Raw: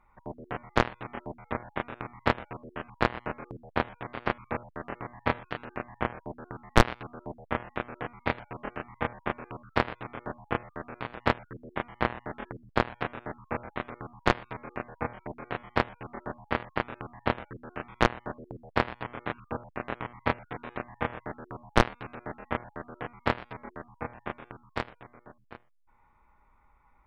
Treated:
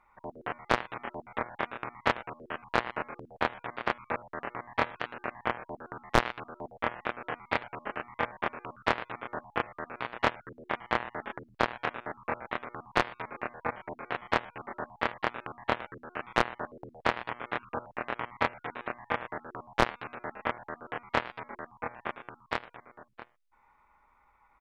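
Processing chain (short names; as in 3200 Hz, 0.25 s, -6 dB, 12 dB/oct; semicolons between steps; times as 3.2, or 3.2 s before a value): overdrive pedal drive 11 dB, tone 6300 Hz, clips at -4 dBFS; tempo 1.1×; gain -3.5 dB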